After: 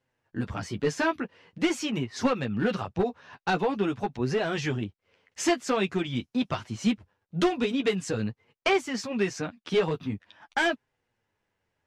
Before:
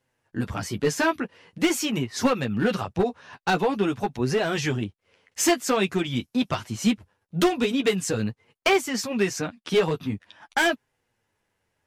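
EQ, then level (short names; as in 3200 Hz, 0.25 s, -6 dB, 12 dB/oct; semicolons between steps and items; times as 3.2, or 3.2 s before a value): air absorption 67 m; -3.0 dB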